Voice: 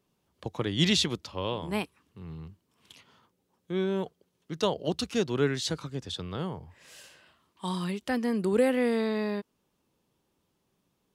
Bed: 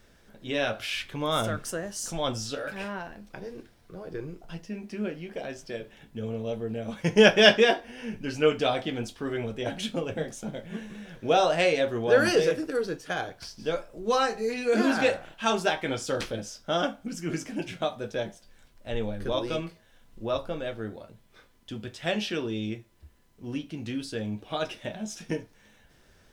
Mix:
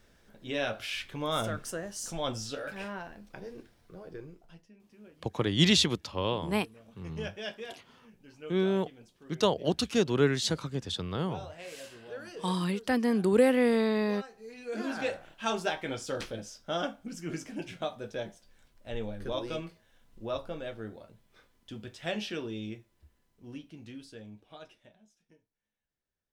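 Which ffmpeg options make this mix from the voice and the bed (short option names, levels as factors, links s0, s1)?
-filter_complex "[0:a]adelay=4800,volume=1.19[s0];[1:a]volume=4.22,afade=t=out:st=3.8:d=0.93:silence=0.125893,afade=t=in:st=14.33:d=1.14:silence=0.149624,afade=t=out:st=22.31:d=2.83:silence=0.0421697[s1];[s0][s1]amix=inputs=2:normalize=0"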